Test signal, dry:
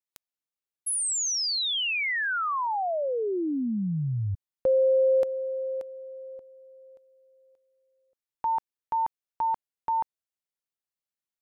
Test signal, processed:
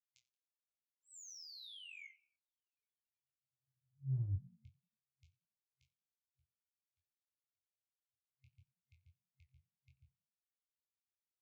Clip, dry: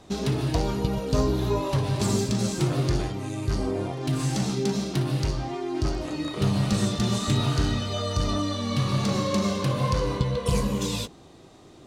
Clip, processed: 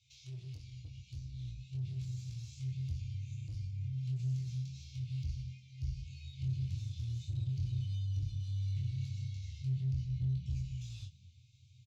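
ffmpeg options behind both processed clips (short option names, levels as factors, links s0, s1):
-filter_complex "[0:a]flanger=delay=8.3:depth=6.1:regen=24:speed=0.25:shape=sinusoidal,lowshelf=f=84:g=-11,acrossover=split=440[s0][s1];[s1]acompressor=threshold=0.01:ratio=6:attack=1.4:knee=2.83:detection=peak[s2];[s0][s2]amix=inputs=2:normalize=0,afftfilt=real='re*(1-between(b*sr/4096,130,2100))':imag='im*(1-between(b*sr/4096,130,2100))':win_size=4096:overlap=0.75,aresample=16000,volume=29.9,asoftclip=hard,volume=0.0335,aresample=44100,highpass=f=65:w=0.5412,highpass=f=65:w=1.3066,asplit=4[s3][s4][s5][s6];[s4]adelay=89,afreqshift=39,volume=0.0841[s7];[s5]adelay=178,afreqshift=78,volume=0.0355[s8];[s6]adelay=267,afreqshift=117,volume=0.0148[s9];[s3][s7][s8][s9]amix=inputs=4:normalize=0,asoftclip=type=tanh:threshold=0.015,flanger=delay=8.9:depth=7.6:regen=-55:speed=1.6:shape=sinusoidal,asplit=2[s10][s11];[s11]adelay=23,volume=0.631[s12];[s10][s12]amix=inputs=2:normalize=0,asubboost=boost=9.5:cutoff=130,volume=0.473"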